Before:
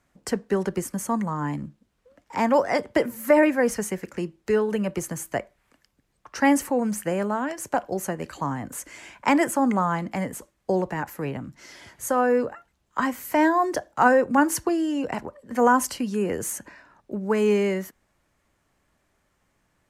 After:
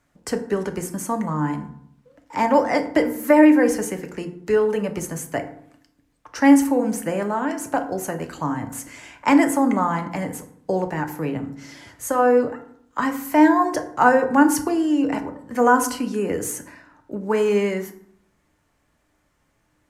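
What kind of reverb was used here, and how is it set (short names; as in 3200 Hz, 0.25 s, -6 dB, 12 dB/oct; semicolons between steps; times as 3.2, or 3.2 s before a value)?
FDN reverb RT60 0.66 s, low-frequency decay 1.35×, high-frequency decay 0.55×, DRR 5.5 dB; gain +1 dB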